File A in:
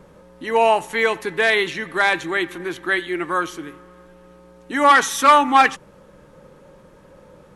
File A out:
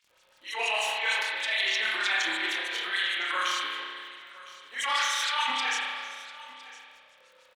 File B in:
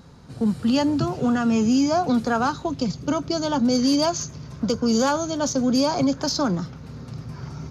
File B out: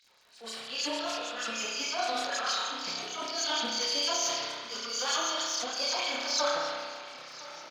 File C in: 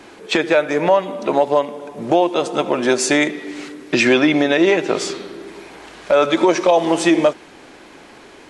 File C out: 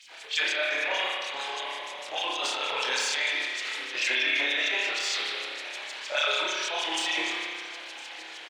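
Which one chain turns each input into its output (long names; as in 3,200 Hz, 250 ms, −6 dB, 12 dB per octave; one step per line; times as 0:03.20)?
running median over 3 samples
meter weighting curve D
noise gate −42 dBFS, range −7 dB
dynamic equaliser 620 Hz, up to −6 dB, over −29 dBFS, Q 2.2
downward compressor, threshold −18 dBFS
auto-filter high-pass sine 6.5 Hz 560–7,300 Hz
multi-voice chorus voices 4, 0.6 Hz, delay 26 ms, depth 4.6 ms
transient designer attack −12 dB, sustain +9 dB
surface crackle 40 per second −43 dBFS
single-tap delay 1,009 ms −18.5 dB
spring reverb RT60 1.8 s, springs 31 ms, chirp 20 ms, DRR −2.5 dB
level that may fall only so fast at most 33 dB per second
level −6.5 dB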